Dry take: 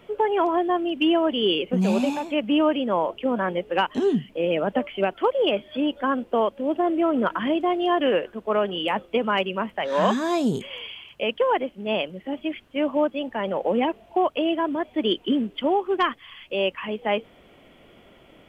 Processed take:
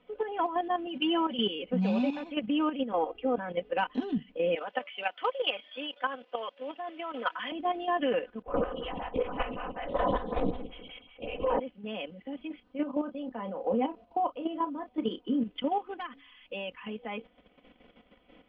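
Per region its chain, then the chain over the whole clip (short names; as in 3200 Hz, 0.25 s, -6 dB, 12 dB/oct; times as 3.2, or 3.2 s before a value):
0.86–1.48 HPF 92 Hz + comb 5.3 ms, depth 66% + transient shaper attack -1 dB, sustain +4 dB
2.92–3.38 high shelf 2400 Hz -7 dB + comb 2.5 ms, depth 100%
4.55–7.52 HPF 630 Hz + high shelf 2300 Hz +10.5 dB
8.42–11.6 flutter echo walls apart 9.4 m, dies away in 0.92 s + LPC vocoder at 8 kHz whisper + photocell phaser 5.3 Hz
12.47–15.42 band shelf 2400 Hz -8 dB 1.3 oct + doubler 31 ms -9.5 dB
15.95–16.53 de-hum 91.62 Hz, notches 3 + compressor 16:1, threshold -26 dBFS + mismatched tape noise reduction decoder only
whole clip: LPF 4200 Hz 24 dB/oct; comb 4 ms, depth 79%; level quantiser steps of 10 dB; gain -6.5 dB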